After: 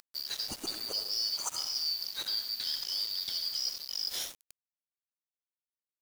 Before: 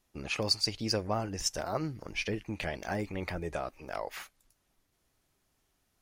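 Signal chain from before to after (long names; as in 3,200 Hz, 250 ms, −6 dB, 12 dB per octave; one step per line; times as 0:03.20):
band-splitting scrambler in four parts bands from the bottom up 4321
parametric band 540 Hz +5 dB 0.66 octaves
reversed playback
downward compressor 10 to 1, threshold −40 dBFS, peak gain reduction 18.5 dB
reversed playback
soft clipping −32.5 dBFS, distortion −22 dB
upward compression, threshold −50 dBFS
bass and treble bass −5 dB, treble +9 dB
on a send: delay with a high-pass on its return 99 ms, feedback 72%, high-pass 3,200 Hz, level −22.5 dB
on the sum: comb and all-pass reverb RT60 0.77 s, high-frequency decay 0.65×, pre-delay 25 ms, DRR 4.5 dB
centre clipping without the shift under −42.5 dBFS
level +4 dB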